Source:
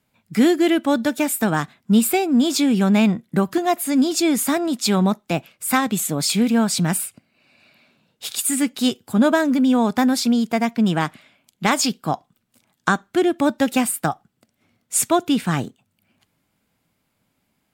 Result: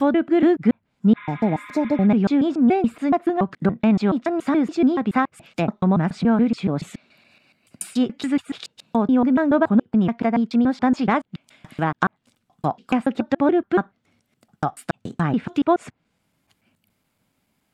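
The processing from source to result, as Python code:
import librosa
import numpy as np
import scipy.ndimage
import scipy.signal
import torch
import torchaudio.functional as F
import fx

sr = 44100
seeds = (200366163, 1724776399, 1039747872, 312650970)

y = fx.block_reorder(x, sr, ms=142.0, group=7)
y = fx.env_lowpass_down(y, sr, base_hz=1600.0, full_db=-17.5)
y = fx.spec_repair(y, sr, seeds[0], start_s=1.19, length_s=0.85, low_hz=940.0, high_hz=3900.0, source='after')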